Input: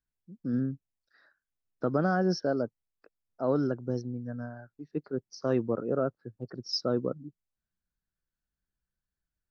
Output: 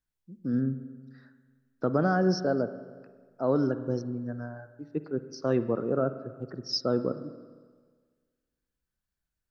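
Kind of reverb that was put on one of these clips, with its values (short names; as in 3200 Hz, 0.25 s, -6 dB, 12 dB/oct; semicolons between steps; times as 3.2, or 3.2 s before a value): spring tank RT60 1.6 s, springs 45/59 ms, chirp 35 ms, DRR 11.5 dB; gain +1.5 dB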